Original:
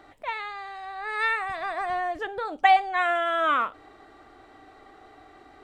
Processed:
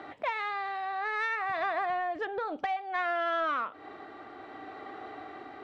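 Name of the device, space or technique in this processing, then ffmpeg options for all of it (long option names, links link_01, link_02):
AM radio: -af "highpass=140,lowpass=3400,acompressor=threshold=-35dB:ratio=8,asoftclip=type=tanh:threshold=-28dB,tremolo=f=0.6:d=0.28,volume=8dB"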